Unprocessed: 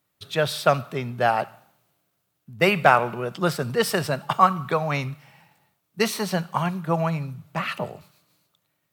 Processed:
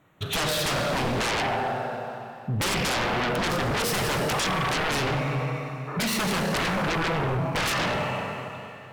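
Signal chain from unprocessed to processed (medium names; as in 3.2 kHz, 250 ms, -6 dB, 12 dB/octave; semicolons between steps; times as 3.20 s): local Wiener filter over 9 samples; flange 0.23 Hz, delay 6.1 ms, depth 2.9 ms, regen -73%; compression 5:1, threshold -34 dBFS, peak gain reduction 17.5 dB; spectral replace 5.90–6.11 s, 290–1800 Hz after; Schroeder reverb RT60 2.7 s, combs from 31 ms, DRR 4 dB; sine folder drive 17 dB, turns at -22.5 dBFS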